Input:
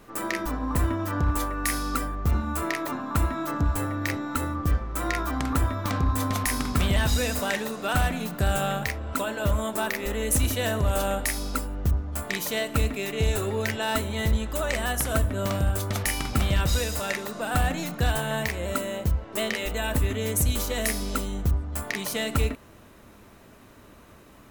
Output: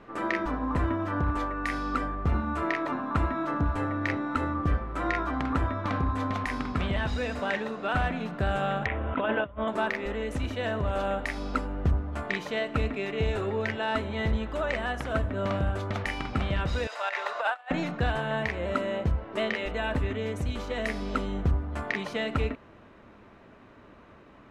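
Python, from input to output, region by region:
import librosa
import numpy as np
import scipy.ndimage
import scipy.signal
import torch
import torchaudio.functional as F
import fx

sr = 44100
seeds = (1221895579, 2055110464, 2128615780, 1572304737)

y = fx.chain(x, sr, fx.steep_lowpass(hz=3600.0, slope=96),
    fx.over_compress(threshold_db=-30.0, ratio=-0.5), at=(8.86, 9.68))
y = fx.chain(y, sr, fx.high_shelf(hz=9400.0, db=-7.5),
    fx.over_compress(threshold_db=-31.0, ratio=-0.5),
    fx.highpass(hz=640.0, slope=24), at=(16.87, 17.71))
y = fx.low_shelf(y, sr, hz=130.0, db=-6.0)
y = fx.rider(y, sr, range_db=10, speed_s=0.5)
y = scipy.signal.sosfilt(scipy.signal.butter(2, 2600.0, 'lowpass', fs=sr, output='sos'), y)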